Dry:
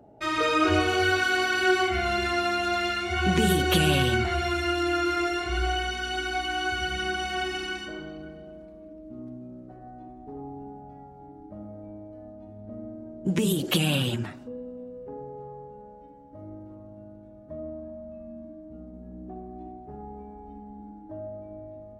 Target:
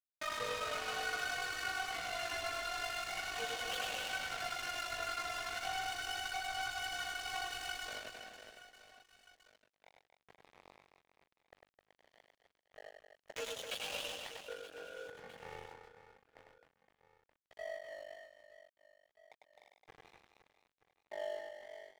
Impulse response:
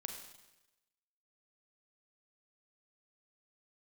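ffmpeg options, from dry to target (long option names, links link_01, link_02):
-af "aeval=exprs='val(0)*sin(2*PI*24*n/s)':channel_layout=same,afftfilt=real='re*between(b*sr/4096,440,7100)':imag='im*between(b*sr/4096,440,7100)':win_size=4096:overlap=0.75,acompressor=threshold=-38dB:ratio=4,flanger=delay=7.9:depth=2.8:regen=12:speed=0.24:shape=sinusoidal,agate=range=-57dB:threshold=-55dB:ratio=16:detection=peak,asoftclip=type=tanh:threshold=-39.5dB,flanger=delay=0.3:depth=3.1:regen=-54:speed=0.62:shape=triangular,aeval=exprs='sgn(val(0))*max(abs(val(0))-0.00299,0)':channel_layout=same,aecho=1:1:100|260|516|925.6|1581:0.631|0.398|0.251|0.158|0.1,volume=16.5dB"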